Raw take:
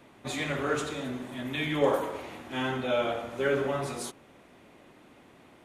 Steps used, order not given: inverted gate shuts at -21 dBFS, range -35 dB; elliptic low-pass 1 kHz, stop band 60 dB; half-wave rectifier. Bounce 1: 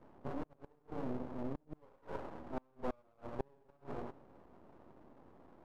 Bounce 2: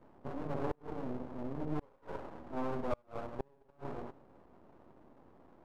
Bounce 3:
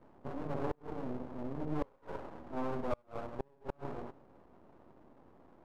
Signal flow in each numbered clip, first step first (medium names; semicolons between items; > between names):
inverted gate > elliptic low-pass > half-wave rectifier; elliptic low-pass > inverted gate > half-wave rectifier; elliptic low-pass > half-wave rectifier > inverted gate